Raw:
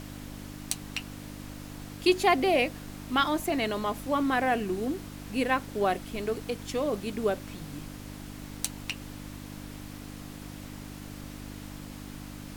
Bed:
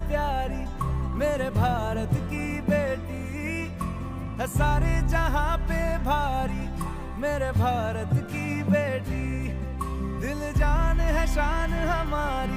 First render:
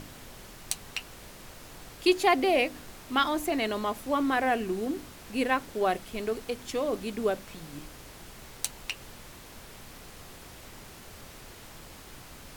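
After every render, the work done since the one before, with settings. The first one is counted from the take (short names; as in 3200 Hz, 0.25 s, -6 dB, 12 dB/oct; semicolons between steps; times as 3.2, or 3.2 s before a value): de-hum 50 Hz, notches 6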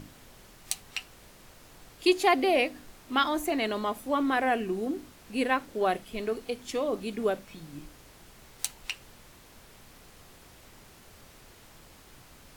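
noise print and reduce 6 dB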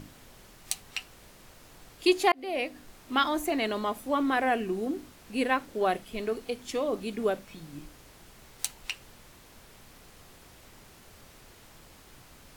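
2.32–3.12 fade in equal-power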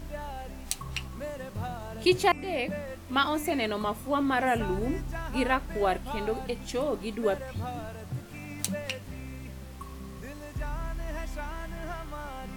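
add bed -12 dB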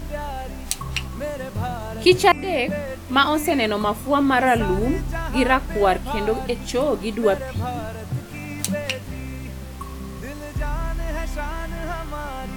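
gain +8.5 dB; limiter -2 dBFS, peak gain reduction 3 dB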